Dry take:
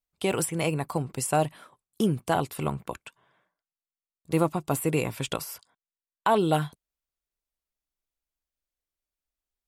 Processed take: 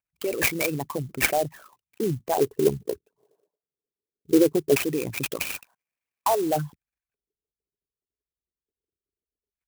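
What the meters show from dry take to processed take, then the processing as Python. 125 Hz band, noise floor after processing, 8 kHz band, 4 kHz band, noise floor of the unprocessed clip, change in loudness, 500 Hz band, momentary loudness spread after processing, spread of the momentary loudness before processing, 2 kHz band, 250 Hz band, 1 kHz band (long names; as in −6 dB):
−4.0 dB, below −85 dBFS, +1.5 dB, +2.0 dB, below −85 dBFS, +2.5 dB, +4.0 dB, 12 LU, 12 LU, +6.0 dB, +2.5 dB, −1.5 dB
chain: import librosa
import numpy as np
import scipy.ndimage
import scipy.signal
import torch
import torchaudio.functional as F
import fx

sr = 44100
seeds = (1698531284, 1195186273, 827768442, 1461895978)

y = fx.envelope_sharpen(x, sr, power=3.0)
y = scipy.signal.sosfilt(scipy.signal.butter(2, 71.0, 'highpass', fs=sr, output='sos'), y)
y = fx.dynamic_eq(y, sr, hz=460.0, q=2.3, threshold_db=-37.0, ratio=4.0, max_db=-3)
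y = np.repeat(y[::6], 6)[:len(y)]
y = fx.filter_lfo_lowpass(y, sr, shape='square', hz=0.21, low_hz=420.0, high_hz=2400.0, q=7.2)
y = fx.notch(y, sr, hz=1400.0, q=14.0)
y = fx.clock_jitter(y, sr, seeds[0], jitter_ms=0.057)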